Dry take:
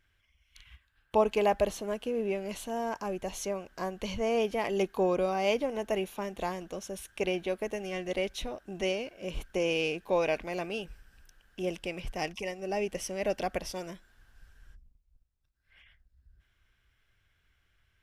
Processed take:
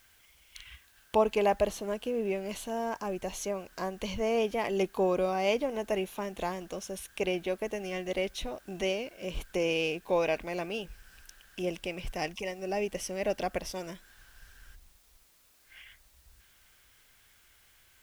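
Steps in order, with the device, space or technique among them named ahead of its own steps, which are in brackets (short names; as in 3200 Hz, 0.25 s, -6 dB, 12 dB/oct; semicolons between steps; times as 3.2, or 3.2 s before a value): noise-reduction cassette on a plain deck (mismatched tape noise reduction encoder only; wow and flutter 22 cents; white noise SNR 31 dB)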